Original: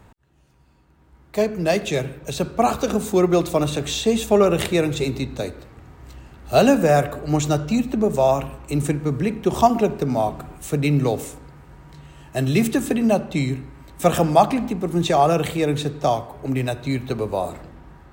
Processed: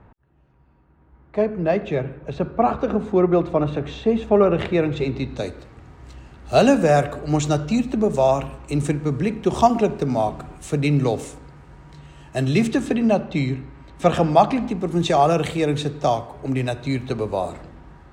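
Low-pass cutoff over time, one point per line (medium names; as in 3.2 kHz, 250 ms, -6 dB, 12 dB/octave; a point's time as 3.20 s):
4.22 s 1.8 kHz
5.16 s 3.1 kHz
5.50 s 8.2 kHz
12.39 s 8.2 kHz
13.06 s 4.6 kHz
14.29 s 4.6 kHz
14.98 s 8.3 kHz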